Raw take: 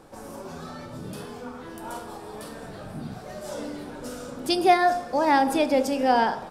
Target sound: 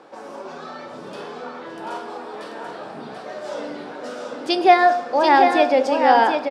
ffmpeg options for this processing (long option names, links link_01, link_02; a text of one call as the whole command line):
ffmpeg -i in.wav -filter_complex "[0:a]highpass=360,lowpass=4100,asplit=2[link_01][link_02];[link_02]aecho=0:1:737:0.531[link_03];[link_01][link_03]amix=inputs=2:normalize=0,volume=6dB" out.wav